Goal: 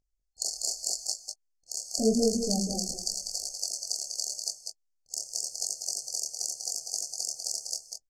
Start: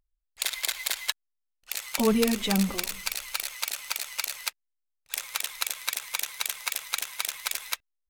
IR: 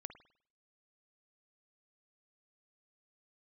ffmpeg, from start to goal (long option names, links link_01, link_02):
-filter_complex "[0:a]lowpass=frequency=6800:width_type=q:width=2.3,flanger=delay=19.5:depth=7.9:speed=0.86,afftfilt=real='re*(1-between(b*sr/4096,790,4300))':imag='im*(1-between(b*sr/4096,790,4300))':win_size=4096:overlap=0.75,asplit=2[link_01][link_02];[link_02]aecho=0:1:196|214:0.501|0.133[link_03];[link_01][link_03]amix=inputs=2:normalize=0,volume=1dB"